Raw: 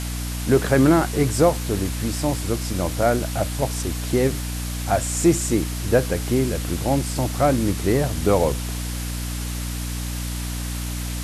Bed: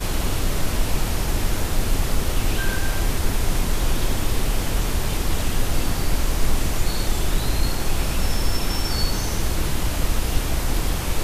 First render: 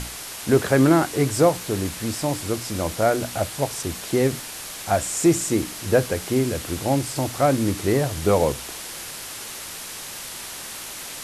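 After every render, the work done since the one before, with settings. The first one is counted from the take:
mains-hum notches 60/120/180/240/300 Hz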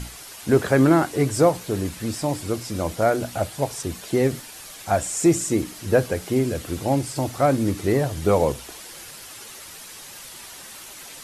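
broadband denoise 8 dB, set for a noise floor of −36 dBFS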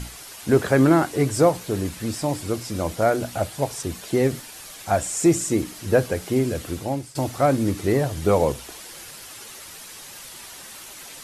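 0:06.67–0:07.15: fade out, to −15 dB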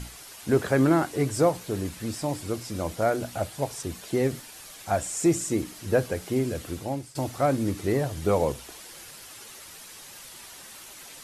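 level −4.5 dB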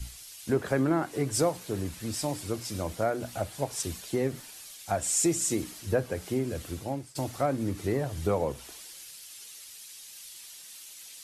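downward compressor 2.5 to 1, threshold −27 dBFS, peak gain reduction 8 dB
multiband upward and downward expander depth 70%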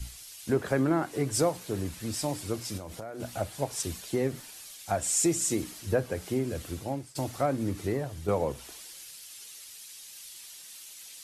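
0:02.77–0:03.20: downward compressor 16 to 1, threshold −35 dBFS
0:07.78–0:08.28: fade out, to −7 dB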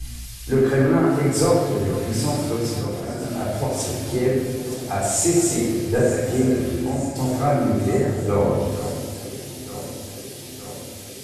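on a send: delay that swaps between a low-pass and a high-pass 460 ms, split 1,800 Hz, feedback 82%, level −12.5 dB
on the sum: rectangular room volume 1,000 cubic metres, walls mixed, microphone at 3.8 metres

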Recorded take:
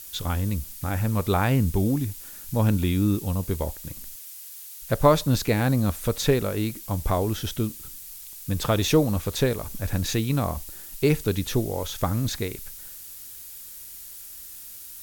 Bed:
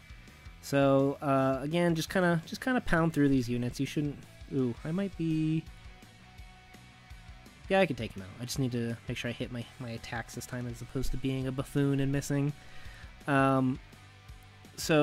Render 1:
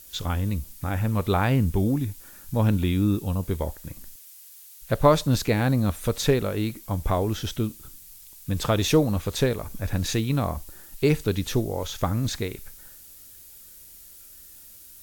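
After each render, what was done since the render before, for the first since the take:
noise reduction from a noise print 6 dB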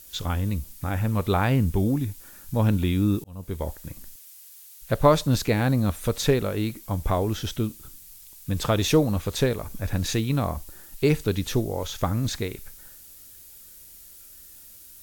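0:03.24–0:03.71: fade in linear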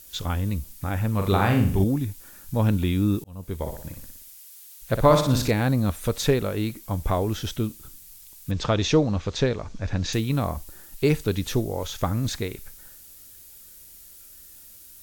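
0:01.17–0:01.84: flutter between parallel walls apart 7.1 metres, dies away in 0.51 s
0:03.56–0:05.51: flutter between parallel walls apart 10.2 metres, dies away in 0.56 s
0:08.51–0:10.13: Butterworth low-pass 6,600 Hz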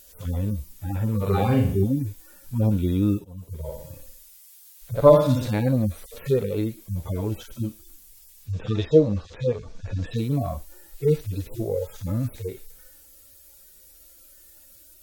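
harmonic-percussive split with one part muted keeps harmonic
parametric band 510 Hz +7 dB 0.9 octaves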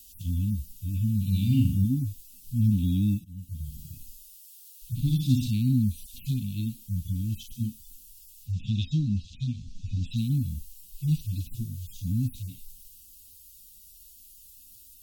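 Chebyshev band-stop filter 260–2,700 Hz, order 5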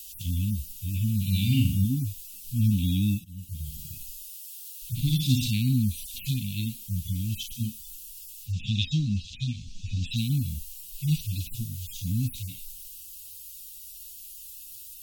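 drawn EQ curve 180 Hz 0 dB, 400 Hz −4 dB, 1,900 Hz +13 dB, 4,600 Hz +8 dB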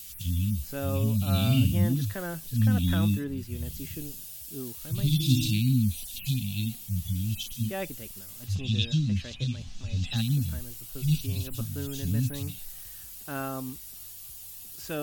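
mix in bed −8.5 dB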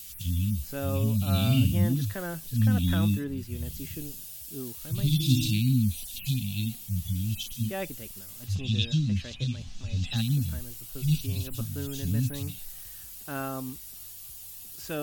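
no processing that can be heard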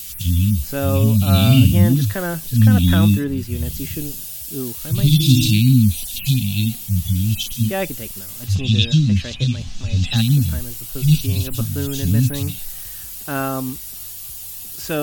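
level +11 dB
brickwall limiter −2 dBFS, peak gain reduction 2 dB

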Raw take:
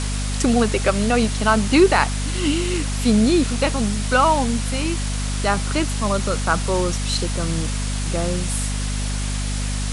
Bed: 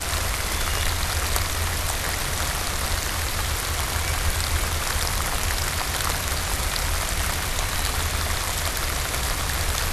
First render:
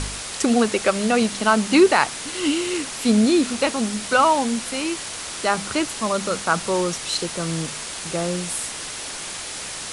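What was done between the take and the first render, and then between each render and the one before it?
hum removal 50 Hz, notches 5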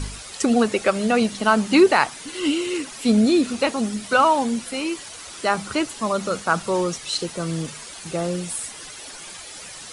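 broadband denoise 10 dB, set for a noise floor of −32 dBFS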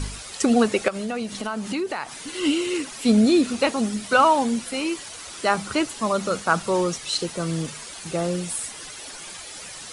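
0:00.88–0:02.26: downward compressor 4 to 1, threshold −26 dBFS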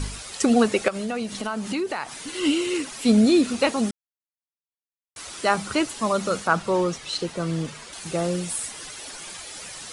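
0:03.91–0:05.16: silence
0:06.47–0:07.93: low-pass filter 3,700 Hz 6 dB per octave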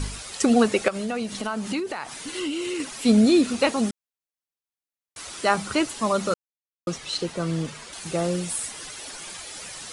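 0:01.79–0:02.80: downward compressor, threshold −25 dBFS
0:06.34–0:06.87: silence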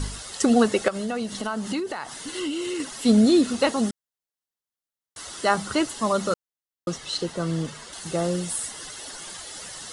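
notch filter 2,400 Hz, Q 5.5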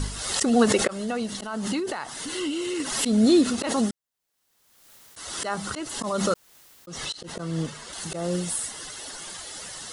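volume swells 217 ms
background raised ahead of every attack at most 43 dB per second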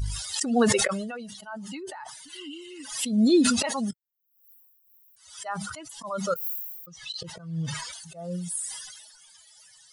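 spectral dynamics exaggerated over time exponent 2
level that may fall only so fast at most 40 dB per second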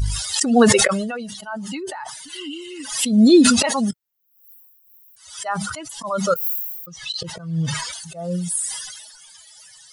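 level +8 dB
brickwall limiter −2 dBFS, peak gain reduction 1 dB

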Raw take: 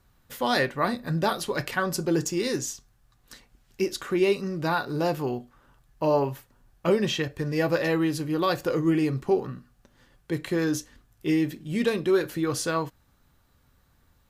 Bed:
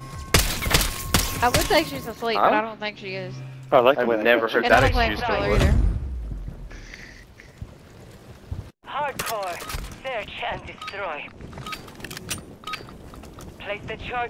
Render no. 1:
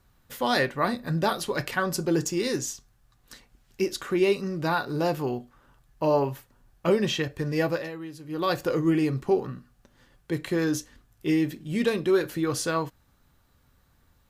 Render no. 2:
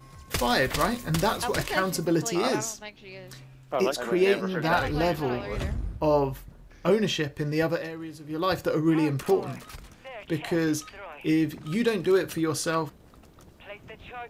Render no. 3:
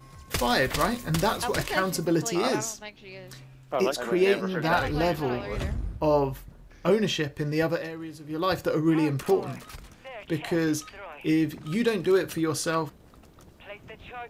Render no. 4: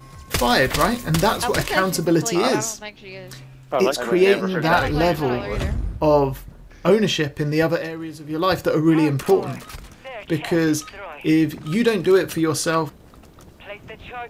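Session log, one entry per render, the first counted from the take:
0:07.62–0:08.52: duck −13.5 dB, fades 0.29 s
mix in bed −12 dB
no processing that can be heard
level +6.5 dB

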